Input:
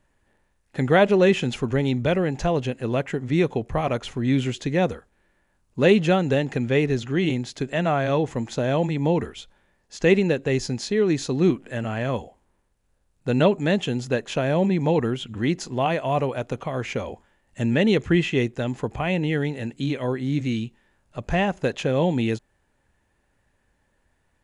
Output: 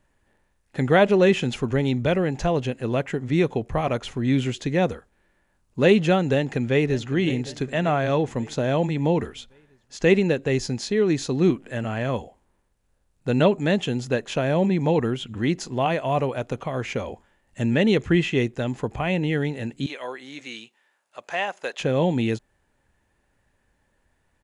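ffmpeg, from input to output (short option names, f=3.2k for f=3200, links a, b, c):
-filter_complex "[0:a]asplit=2[a][b];[b]afade=t=in:st=6.34:d=0.01,afade=t=out:st=7.12:d=0.01,aecho=0:1:560|1120|1680|2240|2800:0.16788|0.0923342|0.0507838|0.0279311|0.0153621[c];[a][c]amix=inputs=2:normalize=0,asettb=1/sr,asplit=3[d][e][f];[d]atrim=end=19.864[g];[e]atrim=start=19.86:end=21.8,asetpts=PTS-STARTPTS,afade=t=in:d=0.004:c=qsin,afade=t=out:st=1.936:d=0.004:c=qsin,highpass=690[h];[f]atrim=start=21.796[i];[g][h]acrossfade=d=0.004:c1=hsin:c2=qsin[j];[j][i]acrossfade=d=0.004:c1=qsin:c2=hsin"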